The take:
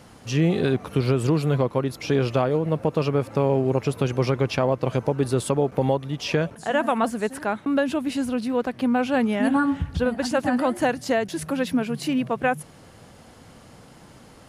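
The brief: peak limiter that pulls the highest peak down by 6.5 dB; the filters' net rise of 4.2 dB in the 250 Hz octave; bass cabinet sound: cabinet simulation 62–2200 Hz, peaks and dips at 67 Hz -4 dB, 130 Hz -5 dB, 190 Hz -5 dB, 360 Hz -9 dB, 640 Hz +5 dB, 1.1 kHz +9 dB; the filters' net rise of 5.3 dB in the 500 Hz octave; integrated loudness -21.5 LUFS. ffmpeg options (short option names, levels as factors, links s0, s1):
-af "equalizer=f=250:t=o:g=6.5,equalizer=f=500:t=o:g=4.5,alimiter=limit=0.299:level=0:latency=1,highpass=f=62:w=0.5412,highpass=f=62:w=1.3066,equalizer=f=67:t=q:w=4:g=-4,equalizer=f=130:t=q:w=4:g=-5,equalizer=f=190:t=q:w=4:g=-5,equalizer=f=360:t=q:w=4:g=-9,equalizer=f=640:t=q:w=4:g=5,equalizer=f=1100:t=q:w=4:g=9,lowpass=f=2200:w=0.5412,lowpass=f=2200:w=1.3066,volume=1.06"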